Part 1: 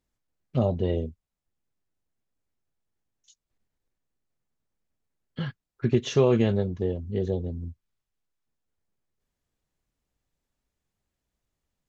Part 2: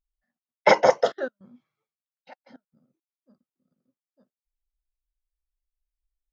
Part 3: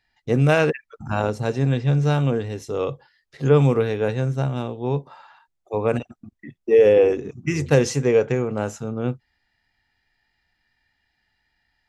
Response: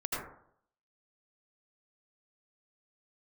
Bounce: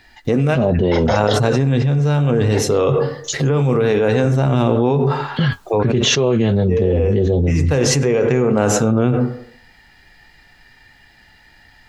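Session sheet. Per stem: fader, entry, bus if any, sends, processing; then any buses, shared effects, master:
+3.0 dB, 0.00 s, no send, three-band expander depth 40%
-9.5 dB, 0.25 s, no send, bell 3800 Hz +12.5 dB 0.69 oct; three-band squash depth 40%; auto duck -12 dB, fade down 1.70 s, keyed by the third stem
-15.0 dB, 0.00 s, send -18 dB, compressor, threshold -18 dBFS, peak gain reduction 8 dB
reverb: on, RT60 0.65 s, pre-delay 72 ms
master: high shelf 5000 Hz -3.5 dB; flange 0.22 Hz, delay 2.9 ms, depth 6.4 ms, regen -70%; fast leveller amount 100%

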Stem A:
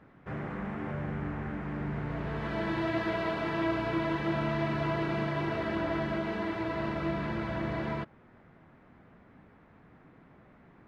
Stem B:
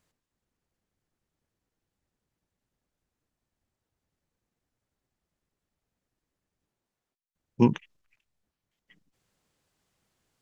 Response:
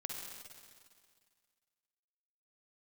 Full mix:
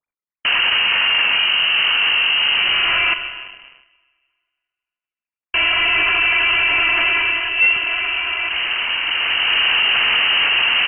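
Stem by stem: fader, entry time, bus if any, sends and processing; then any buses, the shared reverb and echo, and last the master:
+2.0 dB, 0.45 s, muted 3.14–5.54, send -4 dB, fast leveller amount 100%; auto duck -16 dB, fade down 0.45 s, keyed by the second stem
+1.5 dB, 0.00 s, send -9.5 dB, sine-wave speech; notches 50/100/150/200/250/300 Hz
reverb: on, RT60 2.0 s, pre-delay 45 ms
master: sample leveller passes 2; inverted band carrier 3000 Hz

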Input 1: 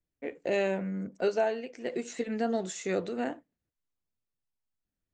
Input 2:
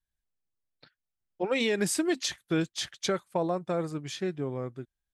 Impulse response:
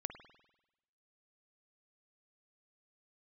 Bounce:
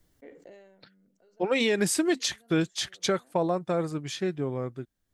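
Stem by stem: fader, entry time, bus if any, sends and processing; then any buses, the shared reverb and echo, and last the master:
-19.5 dB, 0.00 s, no send, notch 2500 Hz, Q 5.4; fast leveller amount 70%; auto duck -18 dB, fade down 0.40 s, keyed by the second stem
+2.5 dB, 0.00 s, no send, dry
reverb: off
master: dry

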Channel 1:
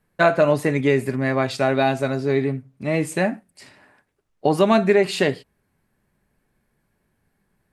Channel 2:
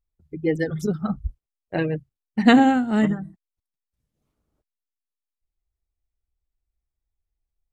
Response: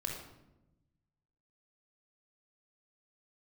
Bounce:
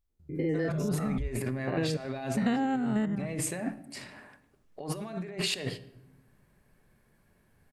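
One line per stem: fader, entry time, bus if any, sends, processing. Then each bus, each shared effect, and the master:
-7.0 dB, 0.35 s, send -11.5 dB, negative-ratio compressor -29 dBFS, ratio -1
+2.0 dB, 0.00 s, no send, stepped spectrum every 0.1 s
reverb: on, RT60 0.95 s, pre-delay 23 ms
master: compressor 8:1, threshold -26 dBFS, peak gain reduction 16.5 dB

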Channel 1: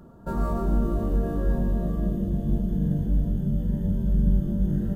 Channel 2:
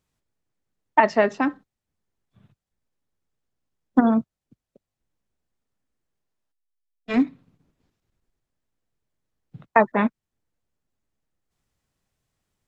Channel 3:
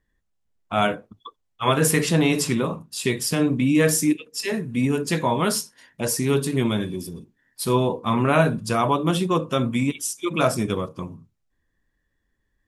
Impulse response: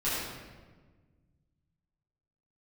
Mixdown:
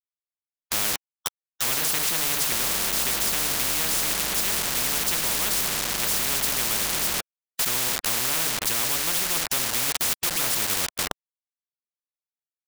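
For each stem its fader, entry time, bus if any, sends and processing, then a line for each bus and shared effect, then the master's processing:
0.0 dB, 2.25 s, no send, soft clip -22.5 dBFS, distortion -11 dB
off
-5.0 dB, 0.00 s, no send, dry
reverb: off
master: bit-crush 6-bit; spectral compressor 10:1

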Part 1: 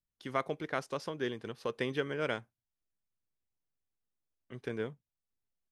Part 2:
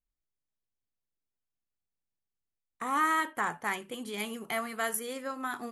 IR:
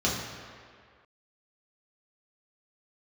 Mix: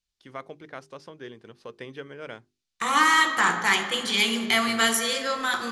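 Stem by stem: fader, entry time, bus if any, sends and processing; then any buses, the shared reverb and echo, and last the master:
-5.0 dB, 0.00 s, no send, notches 50/100/150/200/250/300/350/400 Hz
-0.5 dB, 0.00 s, send -14 dB, bell 4500 Hz +15 dB 2.4 oct; sample leveller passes 1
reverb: on, RT60 2.0 s, pre-delay 3 ms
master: LPF 10000 Hz 12 dB/oct

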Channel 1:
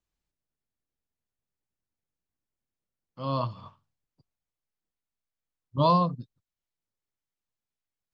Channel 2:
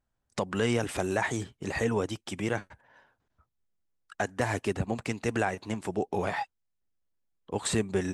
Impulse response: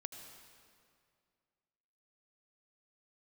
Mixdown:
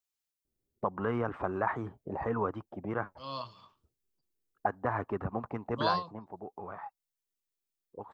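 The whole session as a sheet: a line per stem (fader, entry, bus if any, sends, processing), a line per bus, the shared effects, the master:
-8.0 dB, 0.00 s, no send, tilt +3.5 dB/oct; ending taper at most 200 dB/s
5.77 s -5.5 dB -> 6.38 s -16 dB, 0.45 s, no send, envelope low-pass 380–1200 Hz up, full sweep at -27 dBFS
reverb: off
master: dry

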